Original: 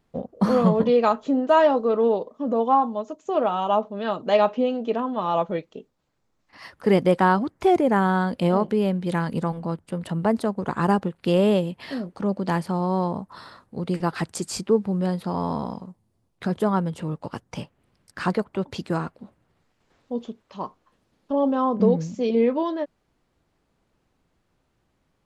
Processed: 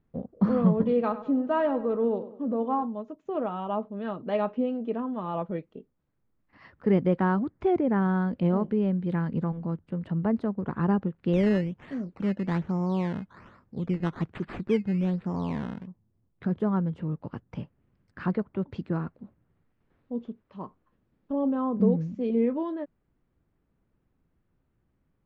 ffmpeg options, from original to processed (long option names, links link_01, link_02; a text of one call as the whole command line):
ffmpeg -i in.wav -filter_complex "[0:a]asettb=1/sr,asplit=3[link_01][link_02][link_03];[link_01]atrim=end=0.794[link_04];[link_02]atrim=start=0.79:end=2.83,asetpts=PTS-STARTPTS,afade=type=in:duration=0.004:curve=qsin,afade=type=out:start_time=2.036:duration=0.004:curve=qsin,asplit=2[link_05][link_06];[link_06]adelay=99,lowpass=frequency=3600:poles=1,volume=-13.5dB,asplit=2[link_07][link_08];[link_08]adelay=99,lowpass=frequency=3600:poles=1,volume=0.45,asplit=2[link_09][link_10];[link_10]adelay=99,lowpass=frequency=3600:poles=1,volume=0.45,asplit=2[link_11][link_12];[link_12]adelay=99,lowpass=frequency=3600:poles=1,volume=0.45[link_13];[link_05][link_07][link_09][link_11][link_13]amix=inputs=5:normalize=0,atrim=end_sample=89964[link_14];[link_03]atrim=start=2.826[link_15];[link_04][link_14]acrossfade=duration=0.004:curve1=hsin:curve2=qsin[link_16];[link_16][link_15]acrossfade=duration=0.004:curve1=qsin:curve2=hsin,asettb=1/sr,asplit=3[link_17][link_18][link_19];[link_17]atrim=end=11.334[link_20];[link_18]atrim=start=11.33:end=15.87,asetpts=PTS-STARTPTS,afade=type=in:duration=0.004:curve=qsin,afade=type=out:start_time=4.536:duration=0.004:curve=qsin,acrusher=samples=13:mix=1:aa=0.000001:lfo=1:lforange=13:lforate=1.2[link_21];[link_19]atrim=start=15.866[link_22];[link_20][link_21]acrossfade=duration=0.004:curve1=hsin:curve2=qsin[link_23];[link_23][link_22]acrossfade=duration=0.004:curve1=qsin:curve2=hsin,lowpass=1500,equalizer=frequency=780:width_type=o:width=2.1:gain=-10" out.wav